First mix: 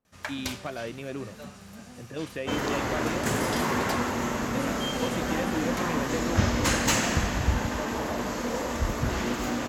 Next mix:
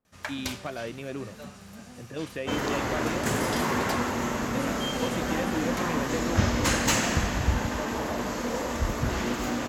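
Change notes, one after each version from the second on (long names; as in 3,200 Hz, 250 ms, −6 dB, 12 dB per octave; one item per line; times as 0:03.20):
nothing changed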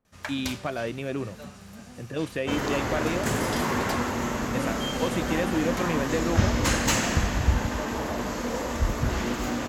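speech +4.5 dB
master: add low-shelf EQ 78 Hz +5.5 dB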